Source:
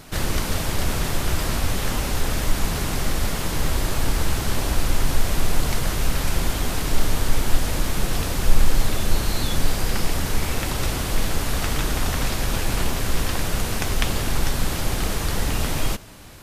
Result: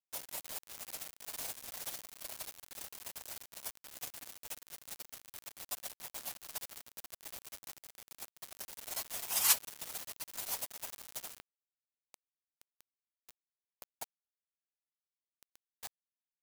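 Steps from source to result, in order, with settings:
reverb reduction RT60 1.1 s
high-pass filter 1,400 Hz 24 dB per octave
gate on every frequency bin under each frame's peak −25 dB weak
high-shelf EQ 2,400 Hz +2.5 dB, from 0:11.40 −10.5 dB
bit reduction 9 bits
level +16.5 dB

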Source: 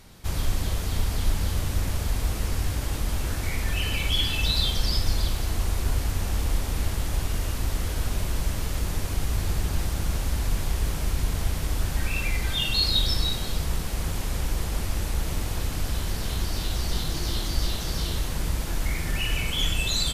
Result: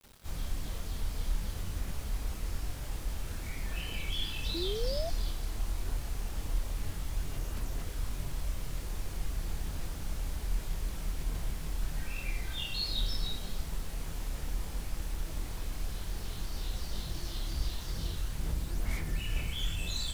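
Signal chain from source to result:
multi-voice chorus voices 6, 1.1 Hz, delay 27 ms, depth 3.7 ms
bit reduction 8 bits
sound drawn into the spectrogram rise, 0:04.54–0:05.10, 320–700 Hz −28 dBFS
level −8.5 dB

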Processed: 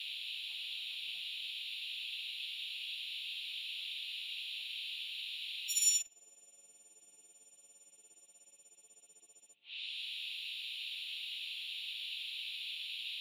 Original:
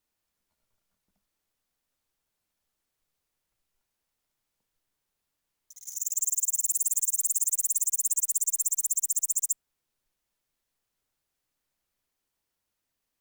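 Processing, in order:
every partial snapped to a pitch grid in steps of 4 semitones
Bessel high-pass filter 240 Hz, order 2
in parallel at −2 dB: output level in coarse steps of 18 dB
on the sum: noise in a band 2,500–4,000 Hz −46 dBFS
treble cut that deepens with the level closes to 430 Hz, closed at −12 dBFS
level +3 dB

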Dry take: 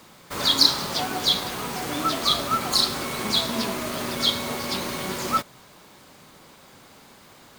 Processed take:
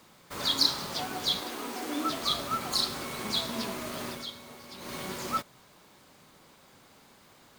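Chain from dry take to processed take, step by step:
0:01.41–0:02.10: low shelf with overshoot 200 Hz −9.5 dB, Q 3
0:04.08–0:04.95: duck −11 dB, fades 0.18 s
level −7.5 dB

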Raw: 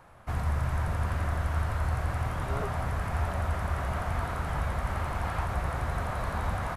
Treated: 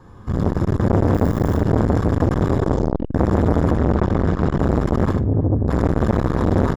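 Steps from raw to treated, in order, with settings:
automatic gain control gain up to 12.5 dB
brickwall limiter −16 dBFS, peak gain reduction 10 dB
0:01.13–0:01.55: background noise violet −39 dBFS
0:02.57: tape stop 0.56 s
0:03.71–0:04.59: high-frequency loss of the air 66 metres
0:05.11–0:05.68: resonant band-pass 120 Hz, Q 1.5
ambience of single reflections 45 ms −11.5 dB, 75 ms −7.5 dB
convolution reverb RT60 0.45 s, pre-delay 3 ms, DRR 11 dB
saturating transformer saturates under 630 Hz
level −1.5 dB

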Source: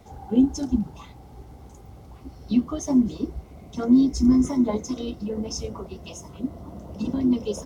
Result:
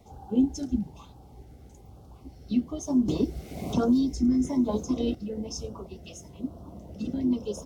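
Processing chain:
auto-filter notch sine 1.1 Hz 960–2,100 Hz
0:03.08–0:05.15: multiband upward and downward compressor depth 100%
level −4.5 dB

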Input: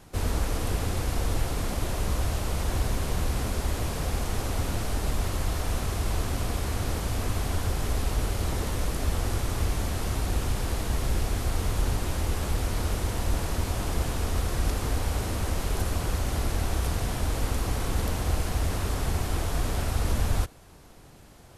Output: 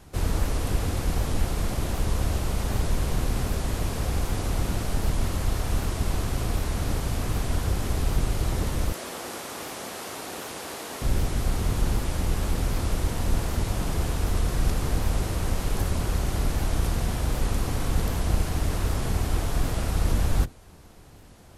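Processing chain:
sub-octave generator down 1 octave, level 0 dB
0:08.93–0:11.02: high-pass filter 400 Hz 12 dB per octave
wow of a warped record 78 rpm, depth 160 cents

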